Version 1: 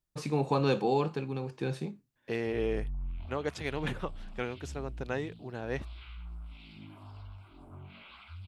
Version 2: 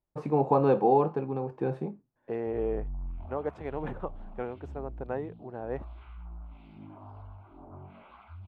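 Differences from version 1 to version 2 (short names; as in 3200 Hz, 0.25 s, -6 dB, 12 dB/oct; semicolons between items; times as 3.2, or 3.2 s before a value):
second voice -4.0 dB; master: add EQ curve 140 Hz 0 dB, 800 Hz +8 dB, 4900 Hz -21 dB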